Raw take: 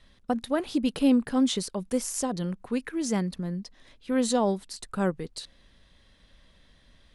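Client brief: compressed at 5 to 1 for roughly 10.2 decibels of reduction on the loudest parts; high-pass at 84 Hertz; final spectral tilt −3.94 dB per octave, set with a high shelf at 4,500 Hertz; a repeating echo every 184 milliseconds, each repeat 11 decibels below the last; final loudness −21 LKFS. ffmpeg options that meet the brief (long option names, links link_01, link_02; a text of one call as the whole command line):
ffmpeg -i in.wav -af "highpass=84,highshelf=frequency=4500:gain=6.5,acompressor=threshold=-29dB:ratio=5,aecho=1:1:184|368|552:0.282|0.0789|0.0221,volume=12.5dB" out.wav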